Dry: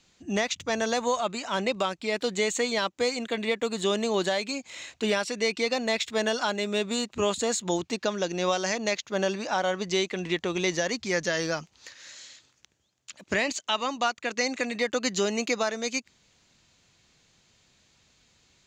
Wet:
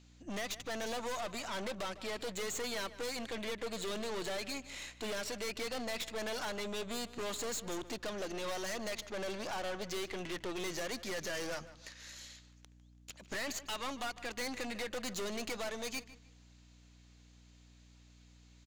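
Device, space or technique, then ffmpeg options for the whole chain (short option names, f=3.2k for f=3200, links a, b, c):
valve amplifier with mains hum: -filter_complex "[0:a]highpass=60,aeval=exprs='(tanh(56.2*val(0)+0.7)-tanh(0.7))/56.2':c=same,aeval=exprs='val(0)+0.002*(sin(2*PI*60*n/s)+sin(2*PI*2*60*n/s)/2+sin(2*PI*3*60*n/s)/3+sin(2*PI*4*60*n/s)/4+sin(2*PI*5*60*n/s)/5)':c=same,lowshelf=f=190:g=-6,asplit=2[a][b];[b]adelay=152,lowpass=f=3.7k:p=1,volume=-15dB,asplit=2[c][d];[d]adelay=152,lowpass=f=3.7k:p=1,volume=0.27,asplit=2[e][f];[f]adelay=152,lowpass=f=3.7k:p=1,volume=0.27[g];[a][c][e][g]amix=inputs=4:normalize=0,volume=-1dB"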